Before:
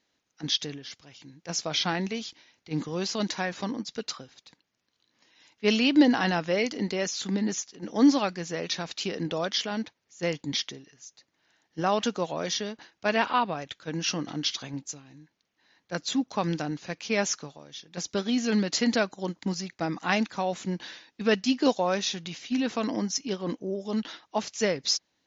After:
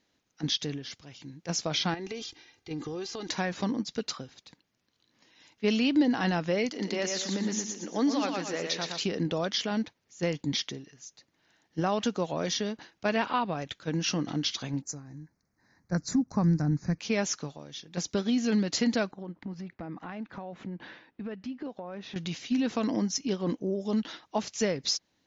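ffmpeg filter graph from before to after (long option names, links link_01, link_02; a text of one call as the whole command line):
ffmpeg -i in.wav -filter_complex "[0:a]asettb=1/sr,asplit=3[link_01][link_02][link_03];[link_01]atrim=end=1.944[link_04];[link_02]atrim=start=1.94:end=3.29,asetpts=PTS-STARTPTS,afade=type=in:duration=0.004:curve=qsin,afade=type=out:start_time=1.346:duration=0.004:curve=qsin,aecho=1:1:2.5:0.68,atrim=end_sample=59535,acompressor=threshold=-35dB:ratio=12:attack=3.2:release=140:knee=1:detection=peak[link_05];[link_03]atrim=start=3.286[link_06];[link_04][link_05]acrossfade=duration=0.004:curve1=hsin:curve2=qsin[link_07];[link_07][link_06]acrossfade=duration=0.004:curve1=qsin:curve2=hsin,asettb=1/sr,asplit=3[link_08][link_09][link_10];[link_08]atrim=end=6.694[link_11];[link_09]atrim=start=6.69:end=9.01,asetpts=PTS-STARTPTS,afade=type=in:duration=0.004:curve=qsin,afade=type=out:start_time=2.316:duration=0.004:curve=qsin,highpass=frequency=480:poles=1,aecho=1:1:116|232|348|464|580:0.562|0.219|0.0855|0.0334|0.013,atrim=end_sample=102312[link_12];[link_10]atrim=start=9.006[link_13];[link_11][link_12]acrossfade=duration=0.004:curve1=hsin:curve2=qsin[link_14];[link_14][link_13]acrossfade=duration=0.004:curve1=qsin:curve2=hsin,asettb=1/sr,asplit=3[link_15][link_16][link_17];[link_15]atrim=end=14.824[link_18];[link_16]atrim=start=14.82:end=16.99,asetpts=PTS-STARTPTS,afade=type=in:duration=0.004:curve=qsin,afade=type=out:start_time=2.166:duration=0.004:curve=qsin,asuperstop=centerf=3100:order=4:qfactor=1.1,asubboost=boost=9:cutoff=200[link_19];[link_17]atrim=start=16.986[link_20];[link_18][link_19]acrossfade=duration=0.004:curve1=hsin:curve2=qsin[link_21];[link_21][link_20]acrossfade=duration=0.004:curve1=qsin:curve2=hsin,asettb=1/sr,asplit=3[link_22][link_23][link_24];[link_22]atrim=end=19.114[link_25];[link_23]atrim=start=19.11:end=22.16,asetpts=PTS-STARTPTS,afade=type=in:duration=0.004:curve=qsin,afade=type=out:start_time=3.046:duration=0.004:curve=qsin,lowpass=2000,acompressor=threshold=-41dB:ratio=4:attack=3.2:release=140:knee=1:detection=peak[link_26];[link_24]atrim=start=22.156[link_27];[link_25][link_26]acrossfade=duration=0.004:curve1=hsin:curve2=qsin[link_28];[link_28][link_27]acrossfade=duration=0.004:curve1=qsin:curve2=hsin,lowshelf=frequency=350:gain=6.5,acompressor=threshold=-27dB:ratio=2" out.wav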